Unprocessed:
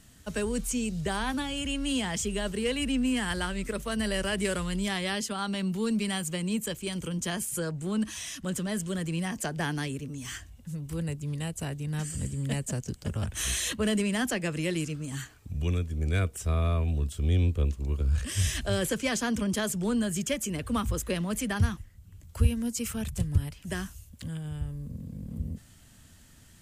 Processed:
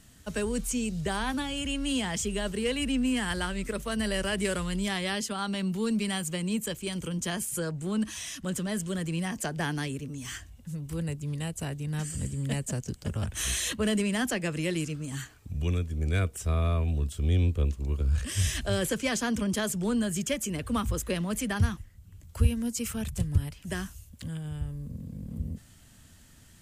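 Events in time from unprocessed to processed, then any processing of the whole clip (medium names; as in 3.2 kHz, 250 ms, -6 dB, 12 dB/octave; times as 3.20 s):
no events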